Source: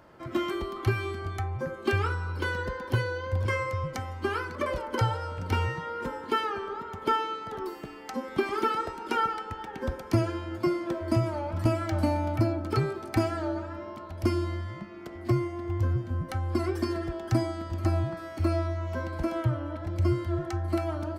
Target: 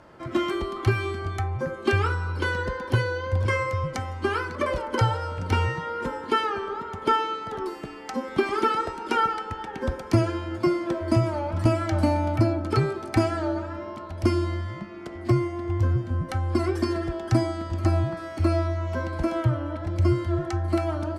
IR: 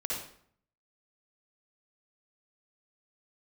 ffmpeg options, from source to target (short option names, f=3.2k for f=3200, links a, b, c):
-af "lowpass=f=11k:w=0.5412,lowpass=f=11k:w=1.3066,volume=4dB"